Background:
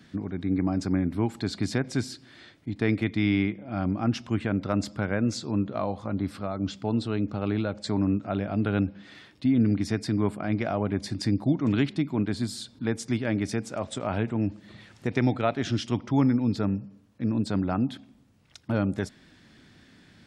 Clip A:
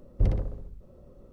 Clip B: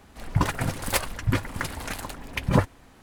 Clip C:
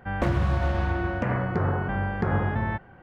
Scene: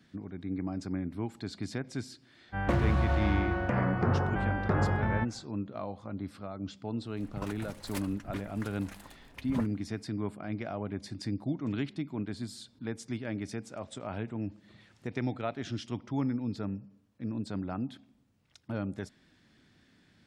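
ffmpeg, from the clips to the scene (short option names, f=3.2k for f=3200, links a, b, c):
-filter_complex "[0:a]volume=-9dB[a];[3:a]atrim=end=3.02,asetpts=PTS-STARTPTS,volume=-3dB,afade=t=in:d=0.1,afade=t=out:st=2.92:d=0.1,adelay=2470[b];[2:a]atrim=end=3.02,asetpts=PTS-STARTPTS,volume=-16.5dB,afade=t=in:d=0.004:c=hsin,afade=t=out:st=3.016:d=0.004:c=hsin,adelay=7010[c];[a][b][c]amix=inputs=3:normalize=0"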